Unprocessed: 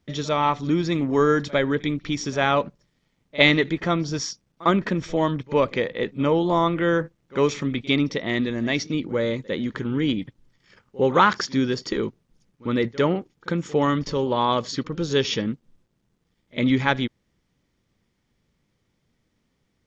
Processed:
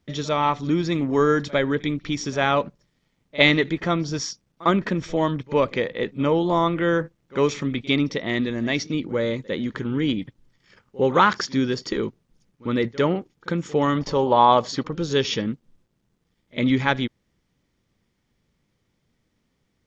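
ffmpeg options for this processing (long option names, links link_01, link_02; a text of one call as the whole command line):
ffmpeg -i in.wav -filter_complex "[0:a]asettb=1/sr,asplit=3[link_01][link_02][link_03];[link_01]atrim=end=13.954[link_04];[link_02]atrim=start=13.95:end=14.91,asetpts=PTS-STARTPTS,afade=type=in:duration=0.004:curve=qsin,afade=type=out:start_time=0.956:duration=0.004:curve=qsin,equalizer=frequency=780:width_type=o:width=1:gain=10[link_05];[link_03]atrim=start=14.906[link_06];[link_04][link_05]acrossfade=duration=0.004:curve1=hsin:curve2=qsin[link_07];[link_07][link_06]acrossfade=duration=0.004:curve1=qsin:curve2=hsin" out.wav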